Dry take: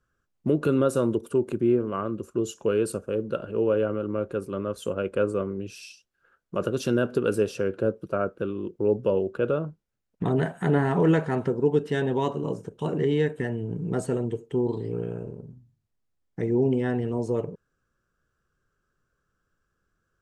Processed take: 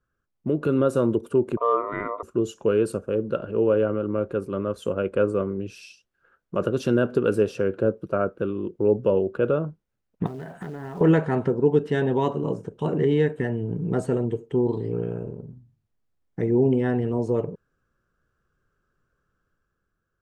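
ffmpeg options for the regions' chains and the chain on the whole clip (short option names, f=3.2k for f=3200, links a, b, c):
-filter_complex "[0:a]asettb=1/sr,asplit=3[a][b][c];[a]atrim=end=1.574[d];[b]atrim=start=1.57:end=2.23,asetpts=PTS-STARTPTS,afade=t=in:d=0.004:c=qsin,afade=t=out:st=0.656:d=0.004:c=qsin,lowpass=f=2.7k:w=0.5412,lowpass=f=2.7k:w=1.3066,aeval=exprs='val(0)*sin(2*PI*820*n/s)':c=same[e];[c]atrim=start=2.226[f];[d][e]acrossfade=d=0.004:c1=hsin:c2=qsin[g];[g][f]acrossfade=d=0.004:c1=qsin:c2=hsin,asettb=1/sr,asplit=3[h][i][j];[h]atrim=end=10.264[k];[i]atrim=start=10.26:end=11.01,asetpts=PTS-STARTPTS,afade=t=in:d=0.004:c=qsin,afade=t=out:st=0.746:d=0.004:c=qsin,asubboost=boost=5:cutoff=95,acompressor=threshold=-33dB:ratio=20:attack=3.2:release=140:knee=1:detection=peak,acrusher=bits=5:mode=log:mix=0:aa=0.000001[l];[j]atrim=start=11.006[m];[k][l]acrossfade=d=0.004:c1=hsin:c2=qsin[n];[n][m]acrossfade=d=0.004:c1=qsin:c2=hsin,highshelf=f=3.7k:g=-9,dynaudnorm=f=110:g=13:m=5.5dB,volume=-2.5dB"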